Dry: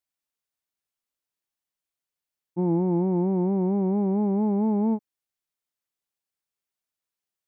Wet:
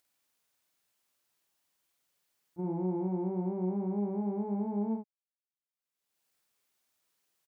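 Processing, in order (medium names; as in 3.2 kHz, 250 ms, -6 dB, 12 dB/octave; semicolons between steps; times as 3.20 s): expander -18 dBFS; bass shelf 70 Hz -10.5 dB; peak limiter -29 dBFS, peak gain reduction 8 dB; upward compressor, threshold -48 dBFS; doubling 49 ms -3 dB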